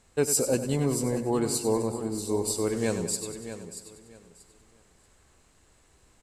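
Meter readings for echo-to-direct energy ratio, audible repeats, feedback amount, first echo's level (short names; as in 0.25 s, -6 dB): -7.0 dB, 10, no steady repeat, -11.0 dB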